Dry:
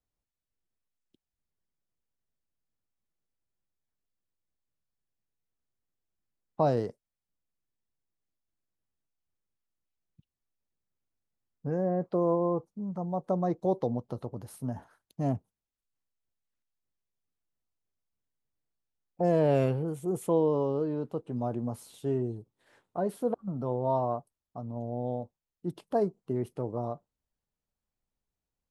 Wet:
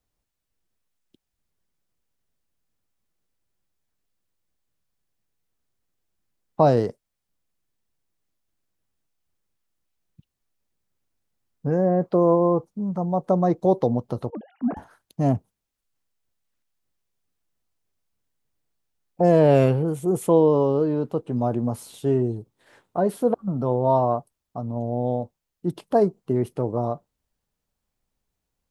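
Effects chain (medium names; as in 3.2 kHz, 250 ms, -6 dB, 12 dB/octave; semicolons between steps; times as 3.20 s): 14.30–14.77 s: formants replaced by sine waves; trim +8.5 dB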